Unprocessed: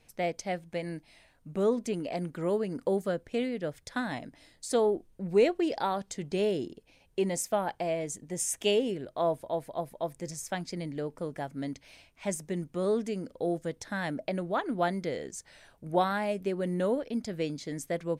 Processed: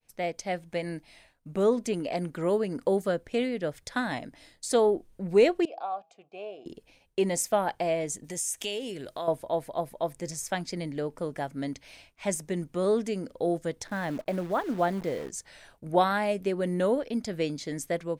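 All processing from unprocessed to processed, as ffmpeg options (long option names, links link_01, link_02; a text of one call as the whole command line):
ffmpeg -i in.wav -filter_complex "[0:a]asettb=1/sr,asplit=3[link_01][link_02][link_03];[link_01]atrim=end=5.654[link_04];[link_02]atrim=start=5.65:end=6.66,asetpts=PTS-STARTPTS,afade=type=in:duration=0.004:curve=qsin,afade=type=out:start_time=1.006:duration=0.004:curve=qsin,asplit=3[link_05][link_06][link_07];[link_05]bandpass=frequency=730:width_type=q:width=8,volume=0dB[link_08];[link_06]bandpass=frequency=1090:width_type=q:width=8,volume=-6dB[link_09];[link_07]bandpass=frequency=2440:width_type=q:width=8,volume=-9dB[link_10];[link_08][link_09][link_10]amix=inputs=3:normalize=0,bandreject=frequency=162.7:width_type=h:width=4,bandreject=frequency=325.4:width_type=h:width=4,bandreject=frequency=488.1:width_type=h:width=4,bandreject=frequency=650.8:width_type=h:width=4,bandreject=frequency=813.5:width_type=h:width=4[link_11];[link_03]atrim=start=6.656[link_12];[link_04][link_11]acrossfade=duration=0.004:curve1=hsin:curve2=qsin[link_13];[link_13][link_12]acrossfade=duration=0.004:curve1=qsin:curve2=hsin,asettb=1/sr,asplit=3[link_14][link_15][link_16];[link_14]atrim=end=8.244[link_17];[link_15]atrim=start=8.24:end=9.28,asetpts=PTS-STARTPTS,afade=type=in:duration=0.004:curve=qsin,afade=type=out:start_time=1.036:duration=0.004:curve=qsin,highshelf=frequency=2400:gain=11,acompressor=threshold=-37dB:ratio=3:attack=3.2:release=140:knee=1:detection=peak[link_18];[link_16]atrim=start=9.276[link_19];[link_17][link_18]acrossfade=duration=0.004:curve1=hsin:curve2=qsin[link_20];[link_20][link_19]acrossfade=duration=0.004:curve1=qsin:curve2=hsin,asettb=1/sr,asplit=3[link_21][link_22][link_23];[link_21]atrim=end=13.874[link_24];[link_22]atrim=start=13.87:end=15.3,asetpts=PTS-STARTPTS,afade=type=in:duration=0.004:curve=qsin,afade=type=out:start_time=1.426:duration=0.004:curve=qsin,acrusher=bits=8:dc=4:mix=0:aa=0.000001,highshelf=frequency=2100:gain=-11[link_25];[link_23]atrim=start=15.296[link_26];[link_24][link_25]acrossfade=duration=0.004:curve1=hsin:curve2=qsin[link_27];[link_27][link_26]acrossfade=duration=0.004:curve1=qsin:curve2=hsin,agate=range=-33dB:threshold=-57dB:ratio=3:detection=peak,equalizer=frequency=150:width_type=o:width=2.6:gain=-2.5,dynaudnorm=framelen=320:gausssize=3:maxgain=4dB" out.wav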